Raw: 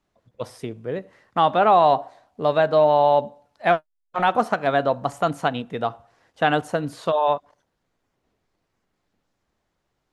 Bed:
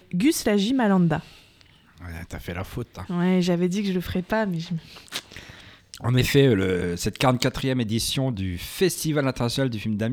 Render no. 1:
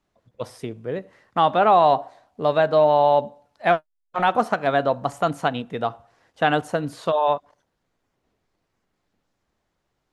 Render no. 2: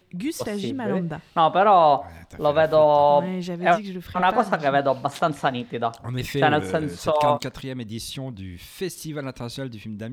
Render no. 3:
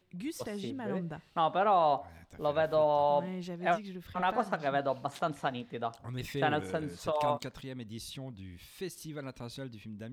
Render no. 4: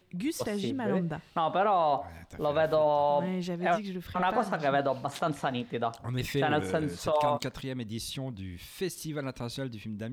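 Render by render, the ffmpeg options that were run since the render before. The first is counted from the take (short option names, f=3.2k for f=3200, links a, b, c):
-af anull
-filter_complex "[1:a]volume=-8dB[a];[0:a][a]amix=inputs=2:normalize=0"
-af "volume=-10.5dB"
-af "acontrast=63,alimiter=limit=-17.5dB:level=0:latency=1:release=33"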